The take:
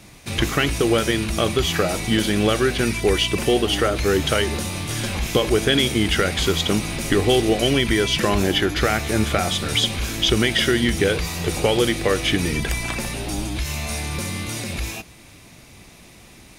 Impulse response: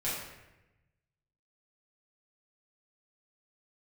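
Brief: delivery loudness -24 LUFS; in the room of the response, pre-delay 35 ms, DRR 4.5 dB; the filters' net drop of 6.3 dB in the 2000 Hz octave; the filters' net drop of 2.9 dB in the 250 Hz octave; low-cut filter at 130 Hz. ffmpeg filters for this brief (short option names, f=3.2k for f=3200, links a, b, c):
-filter_complex "[0:a]highpass=130,equalizer=f=250:t=o:g=-3.5,equalizer=f=2k:t=o:g=-8,asplit=2[a][b];[1:a]atrim=start_sample=2205,adelay=35[c];[b][c]afir=irnorm=-1:irlink=0,volume=-10.5dB[d];[a][d]amix=inputs=2:normalize=0,volume=-2dB"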